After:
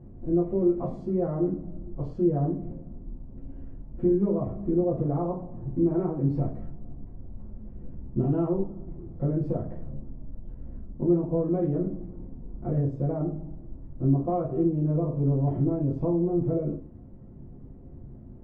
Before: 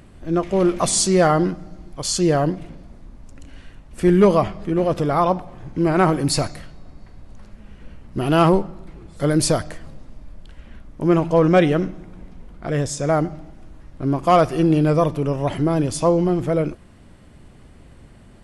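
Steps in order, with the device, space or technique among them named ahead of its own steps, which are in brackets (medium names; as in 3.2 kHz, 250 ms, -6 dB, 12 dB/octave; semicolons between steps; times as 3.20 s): television next door (compression 4:1, threshold -23 dBFS, peak gain reduction 12 dB; low-pass 430 Hz 12 dB/octave; reverberation RT60 0.40 s, pre-delay 3 ms, DRR -6 dB); trim -5 dB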